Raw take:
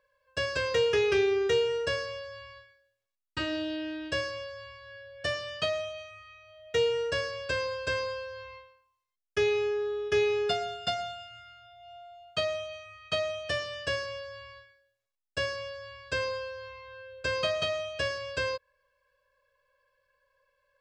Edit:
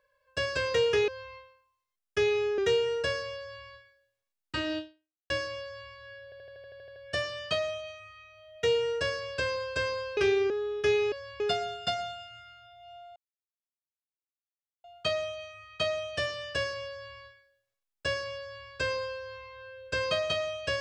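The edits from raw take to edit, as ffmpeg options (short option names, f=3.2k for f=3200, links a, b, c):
-filter_complex "[0:a]asplit=18[a][b][c][d][e][f][g][h][i][j][k][l][m][n][o][p][q][r];[a]atrim=end=1.082[s];[b]atrim=start=8.278:end=9.782[t];[c]atrim=start=1.408:end=4.13,asetpts=PTS-STARTPTS,afade=t=out:st=2.202:d=0.52:c=exp[u];[d]atrim=start=4.13:end=5.152,asetpts=PTS-STARTPTS,afade=t=in:d=0.004:c=hsin[v];[e]atrim=start=5.068:end=5.152[w];[f]atrim=start=5.068:end=5.152[x];[g]atrim=start=5.068:end=5.152[y];[h]atrim=start=5.068:end=5.152[z];[i]atrim=start=5.068:end=5.152[aa];[j]atrim=start=5.068:end=5.152[ab];[k]atrim=start=5.068:end=5.152[ac];[l]atrim=start=5.068:end=5.152[ad];[m]atrim=start=5.068:end=8.282[ae];[n]atrim=start=1.078:end=1.412[af];[o]atrim=start=9.778:end=10.402[ag];[p]atrim=start=2.198:end=2.482[ah];[q]atrim=start=10.398:end=12.16,asetpts=PTS-STARTPTS,afade=t=out:st=1.758:d=0.004:c=hsin,apad=pad_dur=1.68[ai];[r]atrim=start=12.16,asetpts=PTS-STARTPTS,afade=t=in:d=0.004:c=hsin[aj];[s][t]acrossfade=d=0.004:c1=hsin:c2=hsin[ak];[u][v]concat=n=2:v=0:a=1[al];[ak][al]acrossfade=d=0.004:c1=hsin:c2=hsin[am];[am][w]acrossfade=d=0.004:c1=hsin:c2=hsin[an];[an][x]acrossfade=d=0.004:c1=hsin:c2=hsin[ao];[ao][y]acrossfade=d=0.004:c1=hsin:c2=hsin[ap];[ap][z]acrossfade=d=0.004:c1=hsin:c2=hsin[aq];[aq][aa]acrossfade=d=0.004:c1=hsin:c2=hsin[ar];[ar][ab]acrossfade=d=0.004:c1=hsin:c2=hsin[as];[as][ac]acrossfade=d=0.004:c1=hsin:c2=hsin[at];[at][ad]acrossfade=d=0.004:c1=hsin:c2=hsin[au];[au][ae]acrossfade=d=0.004:c1=hsin:c2=hsin[av];[av][af]acrossfade=d=0.004:c1=hsin:c2=hsin[aw];[aw][ag]acrossfade=d=0.004:c1=hsin:c2=hsin[ax];[ax][ah]acrossfade=d=0.004:c1=hsin:c2=hsin[ay];[ai][aj]concat=n=2:v=0:a=1[az];[ay][az]acrossfade=d=0.004:c1=hsin:c2=hsin"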